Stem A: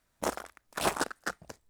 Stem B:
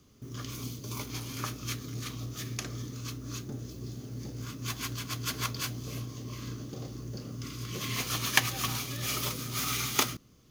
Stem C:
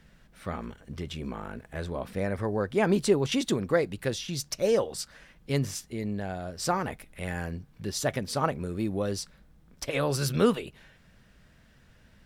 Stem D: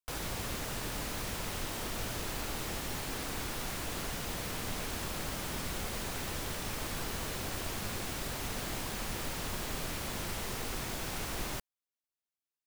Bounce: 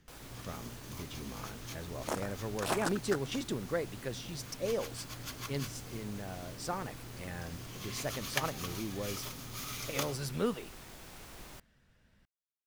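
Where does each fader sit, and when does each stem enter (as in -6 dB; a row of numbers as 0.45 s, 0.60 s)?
-4.5 dB, -10.0 dB, -9.5 dB, -12.5 dB; 1.85 s, 0.00 s, 0.00 s, 0.00 s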